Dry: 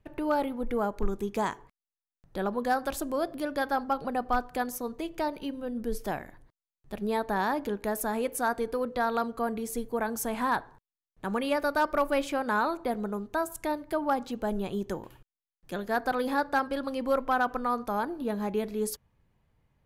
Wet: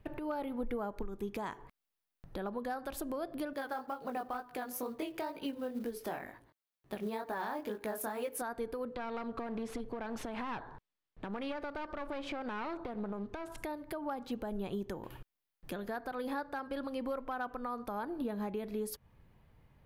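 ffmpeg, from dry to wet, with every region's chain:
-filter_complex "[0:a]asettb=1/sr,asplit=3[a][b][c];[a]atrim=end=3.534[d];[b]atrim=start=3.53:end=8.42,asetpts=PTS-STARTPTS,afade=t=in:d=0.004:c=qsin,afade=t=out:st=4.886:d=0.004:c=qsin,highpass=f=260:p=1,flanger=delay=17:depth=6.6:speed=2.1,acrusher=bits=6:mode=log:mix=0:aa=0.000001[e];[c]atrim=start=8.416[f];[d][e]acrossfade=d=0.004:c1=hsin:c2=qsin[g];[g][f]acrossfade=d=0.004:c1=qsin:c2=hsin,asettb=1/sr,asplit=3[h][i][j];[h]atrim=end=8.944[k];[i]atrim=start=8.94:end=13.58,asetpts=PTS-STARTPTS,afade=t=in:d=0.004:c=qsin,afade=t=out:st=4.636:d=0.004:c=qsin,acompressor=threshold=-32dB:ratio=2:attack=3.2:release=140:knee=1:detection=peak,aeval=exprs='clip(val(0),-1,0.0112)':c=same,lowpass=5.1k[l];[j]atrim=start=13.576[m];[k][l]acrossfade=d=0.004:c1=hsin:c2=qsin[n];[n][m]acrossfade=d=0.004:c1=qsin:c2=hsin,equalizer=f=7.1k:w=1.2:g=-7,acompressor=threshold=-40dB:ratio=10,alimiter=level_in=10.5dB:limit=-24dB:level=0:latency=1:release=128,volume=-10.5dB,volume=6.5dB"

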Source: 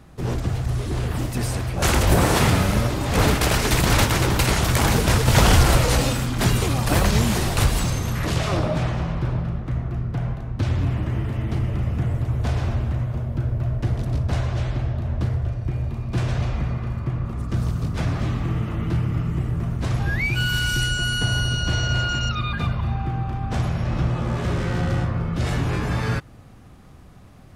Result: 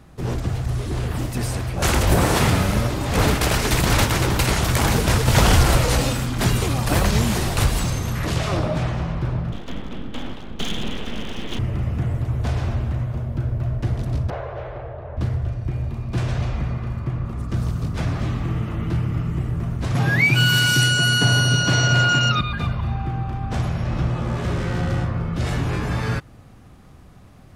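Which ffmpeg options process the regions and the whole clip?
-filter_complex "[0:a]asettb=1/sr,asplit=3[a][b][c];[a]atrim=end=9.524[d];[b]atrim=start=9.52:end=11.59,asetpts=PTS-STARTPTS,afade=t=in:d=0.004:c=qsin,afade=t=out:st=2.066:d=0.004:c=qsin,lowpass=f=3.3k:t=q:w=12,lowshelf=f=69:g=-8,aeval=exprs='abs(val(0))':c=same[e];[c]atrim=start=11.586[f];[d][e]acrossfade=d=0.004:c1=hsin:c2=qsin[g];[g][f]acrossfade=d=0.004:c1=qsin:c2=hsin,asettb=1/sr,asplit=3[h][i][j];[h]atrim=end=14.304[k];[i]atrim=start=14.3:end=15.17,asetpts=PTS-STARTPTS,afade=t=in:d=0.004:c=qsin,afade=t=out:st=0.866:d=0.004:c=qsin,lowpass=1.7k,lowshelf=f=350:t=q:w=3:g=-10.5[l];[j]atrim=start=15.166[m];[k][l]acrossfade=d=0.004:c1=hsin:c2=qsin[n];[n][m]acrossfade=d=0.004:c1=qsin:c2=hsin,asettb=1/sr,asplit=3[o][p][q];[o]atrim=end=19.954[r];[p]atrim=start=19.95:end=22.41,asetpts=PTS-STARTPTS,afade=t=in:d=0.004:c=qsin,afade=t=out:st=2.456:d=0.004:c=qsin,highpass=f=120:w=0.5412,highpass=f=120:w=1.3066,aecho=1:1:7.1:0.3,atrim=end_sample=108486,acontrast=79[s];[q]atrim=start=22.406[t];[r][s]acrossfade=d=0.004:c1=hsin:c2=qsin[u];[u][t]acrossfade=d=0.004:c1=qsin:c2=hsin"

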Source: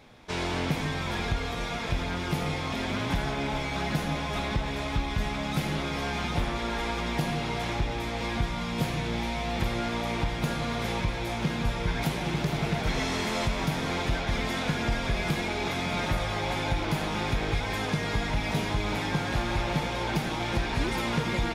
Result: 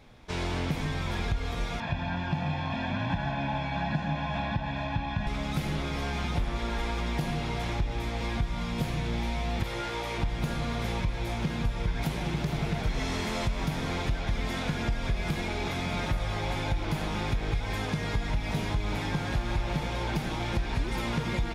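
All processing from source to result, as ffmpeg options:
-filter_complex "[0:a]asettb=1/sr,asplit=3[a][b][c];[a]atrim=end=1.804[d];[b]atrim=start=1.8:end=5.27,asetpts=PTS-STARTPTS,afade=t=in:d=0.004:c=qsin,afade=t=out:st=3.466:d=0.004:c=qsin,highpass=120,lowpass=2.9k,aecho=1:1:1.2:0.88,atrim=end_sample=153027[e];[c]atrim=start=5.266[f];[d][e]acrossfade=d=0.004:c1=hsin:c2=qsin[g];[g][f]acrossfade=d=0.004:c1=qsin:c2=hsin,asettb=1/sr,asplit=3[h][i][j];[h]atrim=end=9.634[k];[i]atrim=start=9.63:end=10.18,asetpts=PTS-STARTPTS,afade=t=in:d=0.004:c=qsin,afade=t=out:st=0.546:d=0.004:c=qsin,lowshelf=f=210:g=-10.5,asplit=2[l][m];[m]adelay=15,volume=-3dB[n];[l][n]amix=inputs=2:normalize=0,atrim=end_sample=24255[o];[j]atrim=start=10.176[p];[k][o]acrossfade=d=0.004:c1=hsin:c2=qsin[q];[q][p]acrossfade=d=0.004:c1=qsin:c2=hsin,lowshelf=f=100:g=10.5,acompressor=threshold=-21dB:ratio=6,volume=-3dB"

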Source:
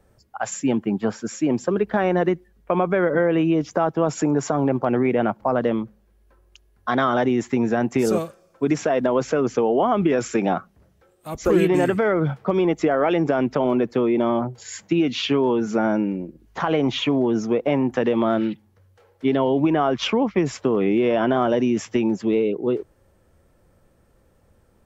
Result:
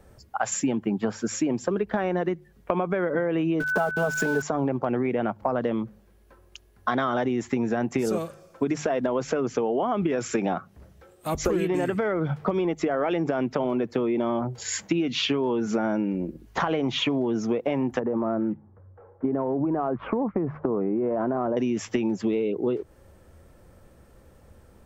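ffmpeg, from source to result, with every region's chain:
-filter_complex "[0:a]asettb=1/sr,asplit=3[a][b][c];[a]atrim=end=3.604[d];[b]atrim=start=3.6:end=4.42,asetpts=PTS-STARTPTS,afade=t=in:d=0.004:c=qsin,afade=t=out:st=0.816:d=0.004:c=qsin,aecho=1:1:4.7:0.87,atrim=end_sample=36162,aeval=exprs='val(0)*gte(abs(val(0)),0.0299)':c=same,aeval=exprs='val(0)+0.0794*sin(2*PI*1500*n/s)':c=same[e];[c]atrim=start=4.416[f];[d][e]acrossfade=d=0.004:c1=hsin:c2=qsin[g];[g][f]acrossfade=d=0.004:c1=qsin:c2=hsin,asettb=1/sr,asplit=3[h][i][j];[h]atrim=end=17.994[k];[i]atrim=start=17.99:end=21.57,asetpts=PTS-STARTPTS,afade=t=in:d=0.004:c=qsin,afade=t=out:st=3.576:d=0.004:c=qsin,lowpass=f=1.3k:w=0.5412,lowpass=f=1.3k:w=1.3066,acompressor=threshold=-21dB:ratio=3:attack=3.2:release=140:knee=1:detection=peak[l];[j]atrim=start=21.566[m];[k][l]acrossfade=d=0.004:c1=hsin:c2=qsin[n];[n][m]acrossfade=d=0.004:c1=qsin:c2=hsin,equalizer=f=69:w=1.5:g=3.5,bandreject=f=50:t=h:w=6,bandreject=f=100:t=h:w=6,bandreject=f=150:t=h:w=6,acompressor=threshold=-28dB:ratio=6,volume=5.5dB"

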